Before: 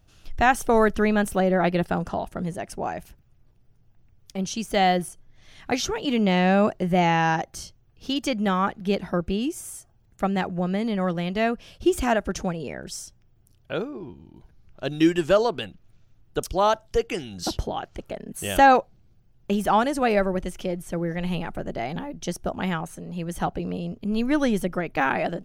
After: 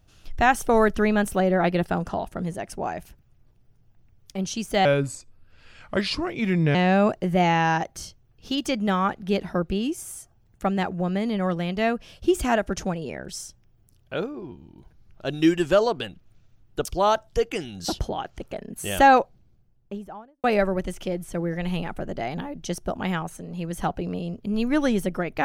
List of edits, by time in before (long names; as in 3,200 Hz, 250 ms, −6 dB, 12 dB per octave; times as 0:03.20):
0:04.85–0:06.33: play speed 78%
0:18.75–0:20.02: fade out and dull